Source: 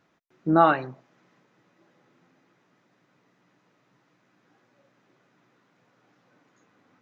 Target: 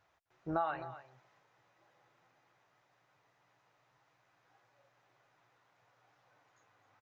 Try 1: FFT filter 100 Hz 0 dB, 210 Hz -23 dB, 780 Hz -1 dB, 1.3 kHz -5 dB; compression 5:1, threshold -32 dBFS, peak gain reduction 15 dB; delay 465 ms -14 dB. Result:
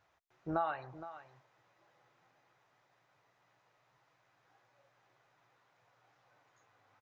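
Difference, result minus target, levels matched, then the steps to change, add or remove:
echo 208 ms late
change: delay 257 ms -14 dB

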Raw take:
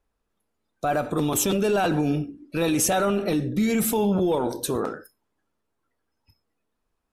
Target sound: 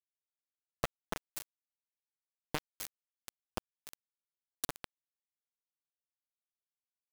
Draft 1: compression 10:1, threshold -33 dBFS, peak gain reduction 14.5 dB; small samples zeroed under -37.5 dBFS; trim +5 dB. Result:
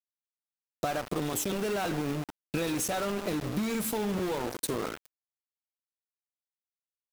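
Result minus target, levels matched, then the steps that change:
small samples zeroed: distortion -24 dB
change: small samples zeroed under -27 dBFS

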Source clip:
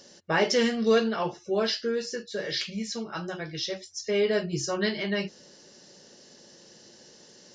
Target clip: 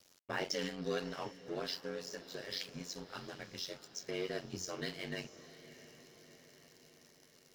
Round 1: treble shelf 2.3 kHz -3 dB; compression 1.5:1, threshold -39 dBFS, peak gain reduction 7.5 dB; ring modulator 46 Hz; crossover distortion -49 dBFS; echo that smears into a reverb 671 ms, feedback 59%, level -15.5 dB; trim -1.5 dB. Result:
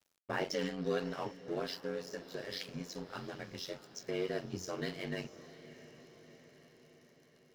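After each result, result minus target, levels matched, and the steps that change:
4 kHz band -4.0 dB; compression: peak gain reduction -3 dB
change: treble shelf 2.3 kHz +5 dB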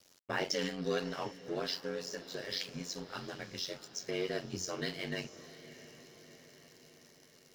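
compression: peak gain reduction -3 dB
change: compression 1.5:1, threshold -47.5 dBFS, peak gain reduction 11 dB

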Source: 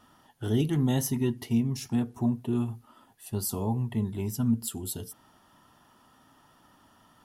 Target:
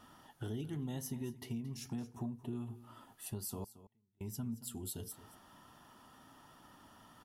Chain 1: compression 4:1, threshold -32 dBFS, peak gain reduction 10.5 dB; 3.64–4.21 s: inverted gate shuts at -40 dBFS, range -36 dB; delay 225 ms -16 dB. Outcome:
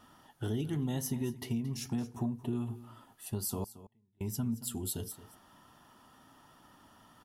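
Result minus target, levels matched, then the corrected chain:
compression: peak gain reduction -6.5 dB
compression 4:1, threshold -41 dBFS, peak gain reduction 17 dB; 3.64–4.21 s: inverted gate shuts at -40 dBFS, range -36 dB; delay 225 ms -16 dB

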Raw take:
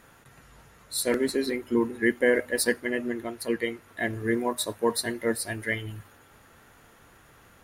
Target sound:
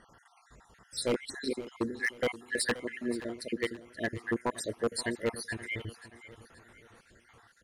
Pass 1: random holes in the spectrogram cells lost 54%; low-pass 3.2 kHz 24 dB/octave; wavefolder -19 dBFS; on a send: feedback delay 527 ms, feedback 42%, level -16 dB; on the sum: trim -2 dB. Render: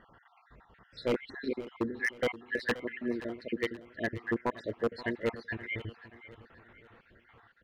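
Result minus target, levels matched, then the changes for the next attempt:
8 kHz band -16.0 dB
change: low-pass 9.4 kHz 24 dB/octave

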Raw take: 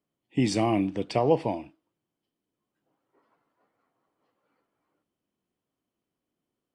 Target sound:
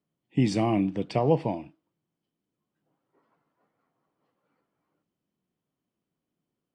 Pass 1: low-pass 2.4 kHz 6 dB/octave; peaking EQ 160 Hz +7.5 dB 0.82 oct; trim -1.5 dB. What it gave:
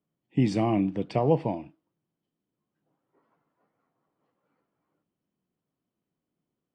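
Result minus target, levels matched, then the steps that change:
4 kHz band -3.5 dB
change: low-pass 5.4 kHz 6 dB/octave

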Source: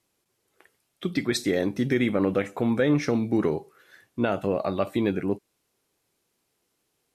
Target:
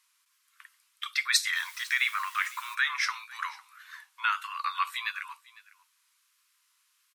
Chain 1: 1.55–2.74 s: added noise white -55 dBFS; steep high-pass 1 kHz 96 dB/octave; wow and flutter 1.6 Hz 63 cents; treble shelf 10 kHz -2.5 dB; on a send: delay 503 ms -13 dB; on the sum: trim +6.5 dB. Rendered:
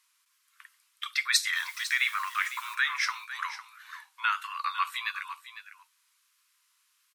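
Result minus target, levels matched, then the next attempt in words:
echo-to-direct +8.5 dB
1.55–2.74 s: added noise white -55 dBFS; steep high-pass 1 kHz 96 dB/octave; wow and flutter 1.6 Hz 63 cents; treble shelf 10 kHz -2.5 dB; on a send: delay 503 ms -21.5 dB; on the sum: trim +6.5 dB

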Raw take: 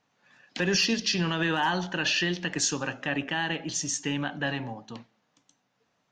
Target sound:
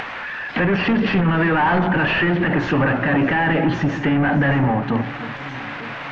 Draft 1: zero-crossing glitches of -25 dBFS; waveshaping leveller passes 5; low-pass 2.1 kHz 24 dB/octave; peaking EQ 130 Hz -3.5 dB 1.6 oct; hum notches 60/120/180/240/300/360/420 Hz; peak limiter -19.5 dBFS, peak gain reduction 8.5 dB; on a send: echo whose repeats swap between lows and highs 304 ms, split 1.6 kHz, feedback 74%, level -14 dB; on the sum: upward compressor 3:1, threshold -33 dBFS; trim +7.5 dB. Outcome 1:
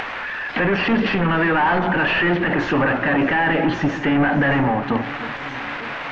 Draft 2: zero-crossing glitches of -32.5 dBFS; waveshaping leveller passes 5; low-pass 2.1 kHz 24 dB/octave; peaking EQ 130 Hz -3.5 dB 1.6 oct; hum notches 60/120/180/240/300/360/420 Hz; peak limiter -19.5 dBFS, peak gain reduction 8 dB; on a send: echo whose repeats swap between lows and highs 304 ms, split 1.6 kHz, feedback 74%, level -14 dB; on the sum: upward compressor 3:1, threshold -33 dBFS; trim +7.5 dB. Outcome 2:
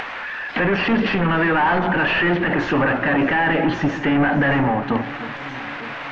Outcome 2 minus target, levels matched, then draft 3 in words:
125 Hz band -3.5 dB
zero-crossing glitches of -32.5 dBFS; waveshaping leveller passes 5; low-pass 2.1 kHz 24 dB/octave; peaking EQ 130 Hz +4 dB 1.6 oct; hum notches 60/120/180/240/300/360/420 Hz; peak limiter -19.5 dBFS, peak gain reduction 11 dB; on a send: echo whose repeats swap between lows and highs 304 ms, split 1.6 kHz, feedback 74%, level -14 dB; on the sum: upward compressor 3:1, threshold -33 dBFS; trim +7.5 dB

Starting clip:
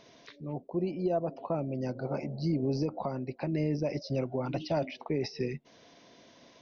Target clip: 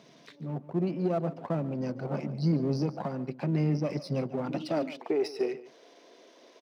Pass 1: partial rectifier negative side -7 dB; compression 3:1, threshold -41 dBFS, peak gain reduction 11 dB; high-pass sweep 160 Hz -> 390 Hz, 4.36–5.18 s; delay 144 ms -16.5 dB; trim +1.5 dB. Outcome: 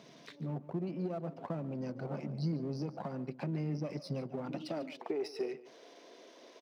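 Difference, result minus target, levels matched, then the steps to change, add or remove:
compression: peak gain reduction +11 dB
remove: compression 3:1, threshold -41 dBFS, peak gain reduction 11 dB

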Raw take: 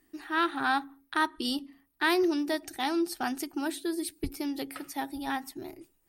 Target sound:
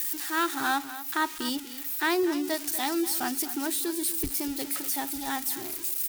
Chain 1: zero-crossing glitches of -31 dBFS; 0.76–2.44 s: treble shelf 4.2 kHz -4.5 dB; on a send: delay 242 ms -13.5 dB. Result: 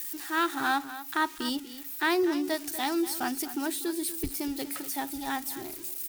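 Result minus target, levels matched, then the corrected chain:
zero-crossing glitches: distortion -6 dB
zero-crossing glitches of -24.5 dBFS; 0.76–2.44 s: treble shelf 4.2 kHz -4.5 dB; on a send: delay 242 ms -13.5 dB

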